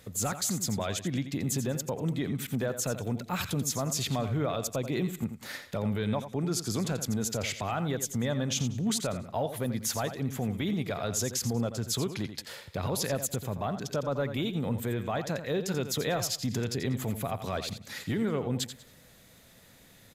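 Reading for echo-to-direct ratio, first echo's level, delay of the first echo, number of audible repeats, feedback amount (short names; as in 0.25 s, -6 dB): -10.0 dB, -10.5 dB, 86 ms, 3, no steady repeat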